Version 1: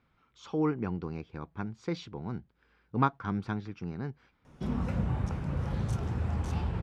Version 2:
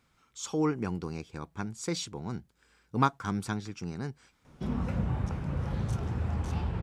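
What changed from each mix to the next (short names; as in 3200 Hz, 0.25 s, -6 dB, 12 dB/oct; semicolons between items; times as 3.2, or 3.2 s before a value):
speech: remove air absorption 280 m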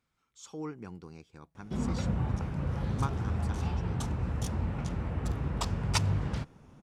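speech -11.0 dB; background: entry -2.90 s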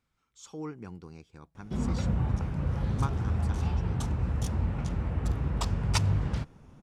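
master: add low shelf 79 Hz +7 dB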